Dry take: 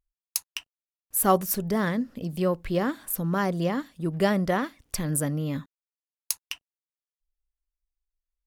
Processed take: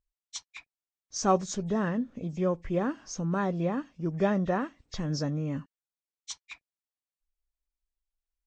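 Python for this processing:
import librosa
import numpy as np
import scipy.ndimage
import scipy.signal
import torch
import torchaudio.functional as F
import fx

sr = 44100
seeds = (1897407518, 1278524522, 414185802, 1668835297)

y = fx.freq_compress(x, sr, knee_hz=1700.0, ratio=1.5)
y = fx.high_shelf(y, sr, hz=2400.0, db=-8.0)
y = F.gain(torch.from_numpy(y), -2.5).numpy()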